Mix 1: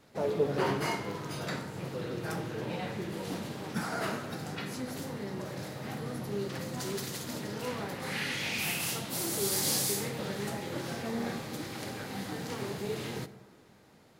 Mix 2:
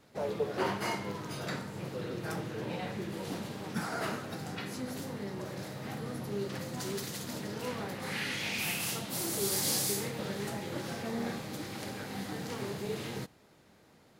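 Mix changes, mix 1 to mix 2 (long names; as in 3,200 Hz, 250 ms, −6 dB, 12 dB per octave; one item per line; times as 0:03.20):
speech: add Butterworth high-pass 430 Hz 48 dB per octave
reverb: off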